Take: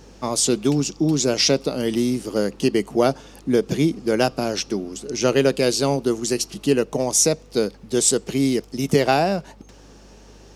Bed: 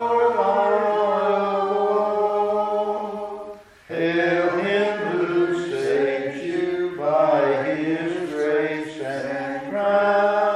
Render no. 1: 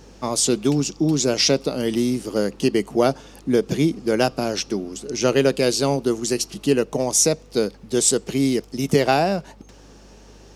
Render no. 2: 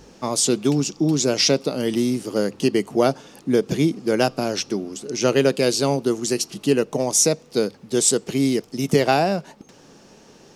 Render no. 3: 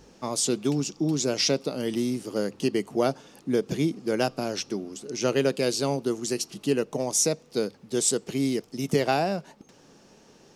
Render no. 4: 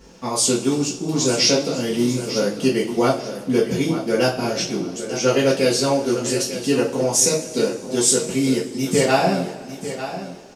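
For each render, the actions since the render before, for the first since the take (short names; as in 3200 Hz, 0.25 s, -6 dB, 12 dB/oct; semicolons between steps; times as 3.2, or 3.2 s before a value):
nothing audible
de-hum 50 Hz, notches 2
gain -6 dB
feedback echo 0.897 s, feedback 26%, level -11.5 dB; two-slope reverb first 0.3 s, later 2.3 s, from -21 dB, DRR -7 dB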